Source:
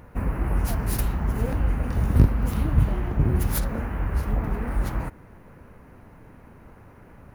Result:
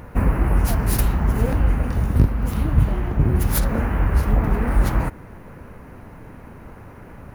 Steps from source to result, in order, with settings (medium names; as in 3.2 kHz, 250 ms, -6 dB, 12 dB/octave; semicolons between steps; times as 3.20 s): gain riding 0.5 s; trim +4.5 dB